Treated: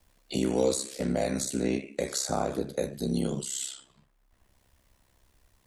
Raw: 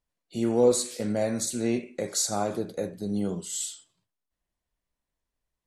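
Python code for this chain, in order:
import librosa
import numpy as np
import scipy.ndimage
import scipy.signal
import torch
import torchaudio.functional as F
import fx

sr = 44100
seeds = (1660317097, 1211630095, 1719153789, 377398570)

y = x * np.sin(2.0 * np.pi * 33.0 * np.arange(len(x)) / sr)
y = fx.band_squash(y, sr, depth_pct=70)
y = F.gain(torch.from_numpy(y), 1.5).numpy()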